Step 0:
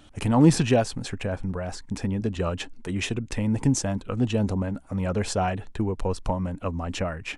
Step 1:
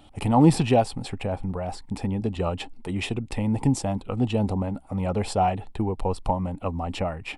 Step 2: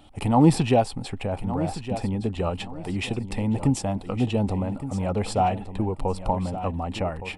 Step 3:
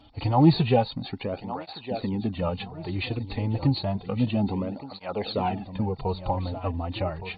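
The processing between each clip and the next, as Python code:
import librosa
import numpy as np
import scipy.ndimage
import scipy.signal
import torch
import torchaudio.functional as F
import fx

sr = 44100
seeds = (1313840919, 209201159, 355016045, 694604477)

y1 = fx.graphic_eq_31(x, sr, hz=(800, 1600, 6300), db=(9, -10, -12))
y2 = fx.echo_feedback(y1, sr, ms=1166, feedback_pct=27, wet_db=-12)
y3 = fx.freq_compress(y2, sr, knee_hz=3500.0, ratio=4.0)
y3 = fx.flanger_cancel(y3, sr, hz=0.3, depth_ms=5.7)
y3 = y3 * librosa.db_to_amplitude(1.0)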